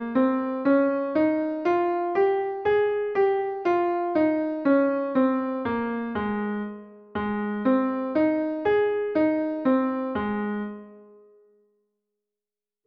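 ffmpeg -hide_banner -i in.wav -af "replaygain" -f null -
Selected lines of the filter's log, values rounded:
track_gain = +4.9 dB
track_peak = 0.224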